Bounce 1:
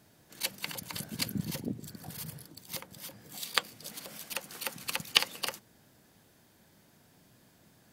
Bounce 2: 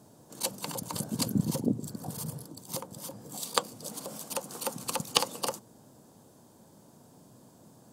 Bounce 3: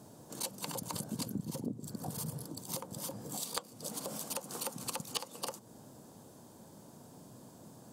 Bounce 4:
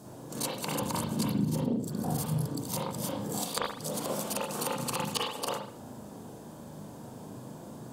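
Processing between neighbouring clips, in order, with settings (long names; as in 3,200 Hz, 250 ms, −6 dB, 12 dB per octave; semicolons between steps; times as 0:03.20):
octave-band graphic EQ 125/250/500/1,000/2,000/8,000 Hz +7/+8/+8/+10/−10/+9 dB; level −2 dB
downward compressor 5 to 1, threshold −38 dBFS, peak gain reduction 18 dB; level +2 dB
convolution reverb, pre-delay 39 ms, DRR −5 dB; level +3.5 dB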